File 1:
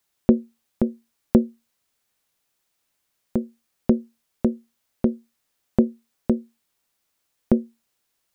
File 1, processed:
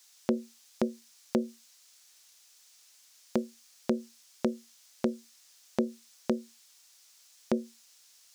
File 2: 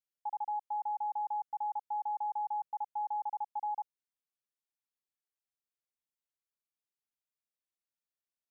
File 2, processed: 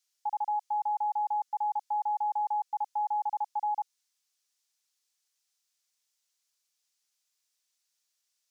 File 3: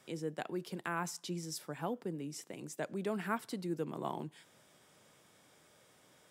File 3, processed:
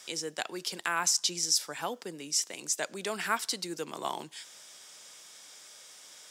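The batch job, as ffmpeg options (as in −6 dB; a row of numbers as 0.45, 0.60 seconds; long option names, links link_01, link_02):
-af "highpass=frequency=1000:poles=1,equalizer=frequency=5800:width_type=o:width=1.6:gain=12.5,alimiter=limit=-22dB:level=0:latency=1:release=154,volume=8.5dB"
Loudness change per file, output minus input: −10.0, +5.0, +9.0 LU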